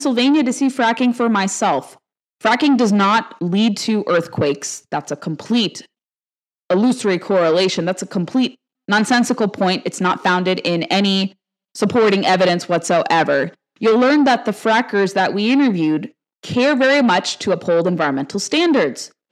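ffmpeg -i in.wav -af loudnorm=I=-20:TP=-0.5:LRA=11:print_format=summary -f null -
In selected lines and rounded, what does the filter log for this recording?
Input Integrated:    -16.9 LUFS
Input True Peak:      -3.9 dBTP
Input LRA:             2.9 LU
Input Threshold:     -27.1 LUFS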